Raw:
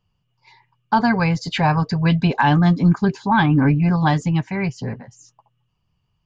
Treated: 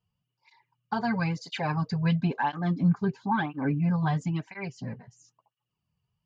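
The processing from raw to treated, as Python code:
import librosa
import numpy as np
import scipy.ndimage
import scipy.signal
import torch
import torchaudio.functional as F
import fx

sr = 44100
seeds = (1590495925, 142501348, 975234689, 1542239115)

y = fx.high_shelf(x, sr, hz=3900.0, db=-10.0, at=(2.16, 4.21))
y = fx.flanger_cancel(y, sr, hz=0.99, depth_ms=3.8)
y = y * 10.0 ** (-7.5 / 20.0)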